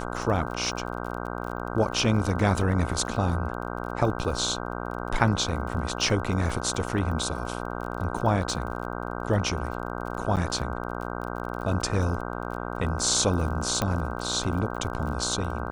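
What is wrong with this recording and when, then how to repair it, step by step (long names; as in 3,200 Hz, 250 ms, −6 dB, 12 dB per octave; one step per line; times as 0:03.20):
mains buzz 60 Hz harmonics 26 −33 dBFS
surface crackle 34 per second −35 dBFS
0:10.36–0:10.37: drop-out 8.4 ms
0:13.82: click −11 dBFS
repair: click removal
hum removal 60 Hz, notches 26
repair the gap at 0:10.36, 8.4 ms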